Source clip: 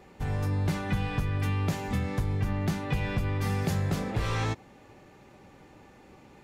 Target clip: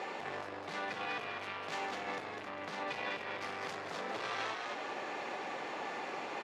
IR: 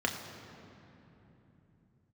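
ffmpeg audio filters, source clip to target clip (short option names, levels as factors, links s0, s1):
-filter_complex "[0:a]asoftclip=type=tanh:threshold=0.0251,acompressor=threshold=0.00355:ratio=4,asplit=2[s0][s1];[s1]asplit=5[s2][s3][s4][s5][s6];[s2]adelay=201,afreqshift=-73,volume=0.596[s7];[s3]adelay=402,afreqshift=-146,volume=0.214[s8];[s4]adelay=603,afreqshift=-219,volume=0.0776[s9];[s5]adelay=804,afreqshift=-292,volume=0.0279[s10];[s6]adelay=1005,afreqshift=-365,volume=0.01[s11];[s7][s8][s9][s10][s11]amix=inputs=5:normalize=0[s12];[s0][s12]amix=inputs=2:normalize=0,alimiter=level_in=7.94:limit=0.0631:level=0:latency=1:release=92,volume=0.126,highpass=550,lowpass=4800,volume=7.08"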